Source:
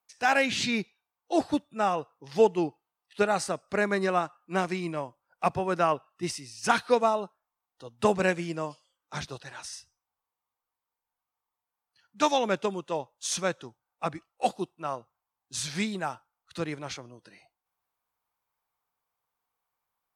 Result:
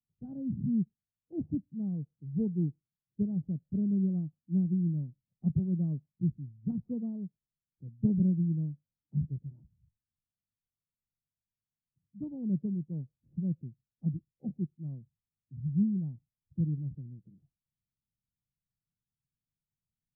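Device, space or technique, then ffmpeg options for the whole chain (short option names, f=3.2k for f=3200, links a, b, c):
the neighbour's flat through the wall: -af "lowpass=f=210:w=0.5412,lowpass=f=210:w=1.3066,equalizer=f=150:t=o:w=0.73:g=5.5,volume=5dB"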